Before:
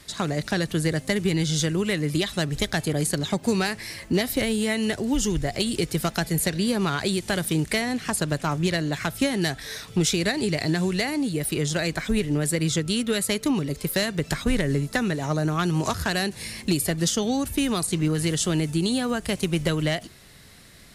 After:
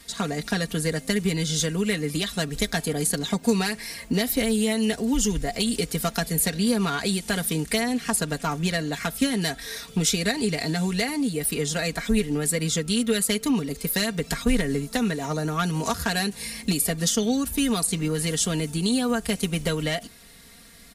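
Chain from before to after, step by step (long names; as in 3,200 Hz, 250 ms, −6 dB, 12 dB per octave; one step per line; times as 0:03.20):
high-shelf EQ 8,600 Hz +7 dB
comb filter 4.3 ms, depth 72%
level −2.5 dB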